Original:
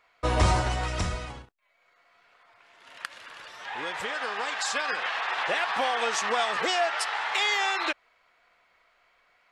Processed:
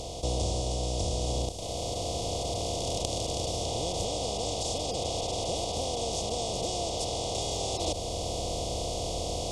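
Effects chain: spectral levelling over time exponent 0.2; Chebyshev band-stop 570–4600 Hz, order 2; gain riding within 4 dB 0.5 s; trim -7.5 dB

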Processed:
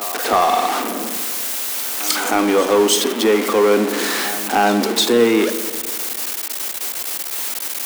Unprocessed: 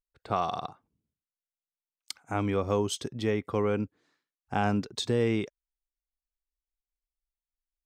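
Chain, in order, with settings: jump at every zero crossing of -30 dBFS; treble shelf 7.6 kHz +5 dB; in parallel at -3 dB: gain riding within 3 dB 0.5 s; on the sum: steep high-pass 230 Hz 48 dB/octave; reverse echo 309 ms -17 dB; saturation -14.5 dBFS, distortion -20 dB; spring tank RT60 1.8 s, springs 34/42 ms, chirp 50 ms, DRR 8.5 dB; trim +9 dB

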